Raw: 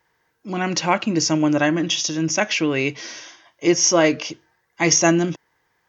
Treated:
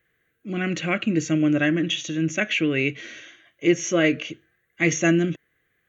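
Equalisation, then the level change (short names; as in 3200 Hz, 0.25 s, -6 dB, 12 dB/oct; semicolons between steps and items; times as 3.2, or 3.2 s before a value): notch 970 Hz, Q 25; fixed phaser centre 2200 Hz, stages 4; 0.0 dB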